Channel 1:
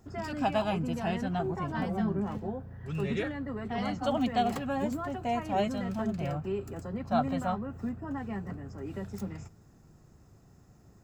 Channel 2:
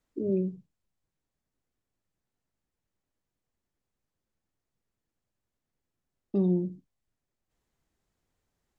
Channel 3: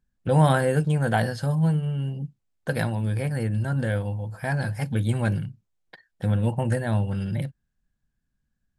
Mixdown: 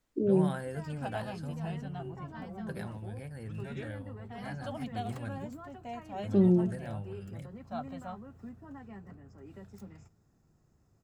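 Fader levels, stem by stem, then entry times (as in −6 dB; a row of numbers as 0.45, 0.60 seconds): −11.0, +2.0, −16.5 decibels; 0.60, 0.00, 0.00 seconds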